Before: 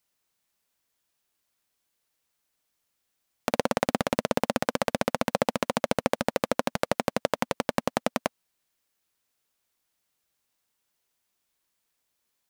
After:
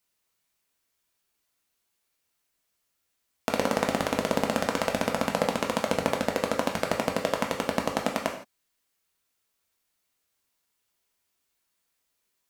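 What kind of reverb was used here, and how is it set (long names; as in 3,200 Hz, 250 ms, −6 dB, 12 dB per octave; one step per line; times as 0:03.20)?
reverb whose tail is shaped and stops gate 190 ms falling, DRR 1 dB
level −1.5 dB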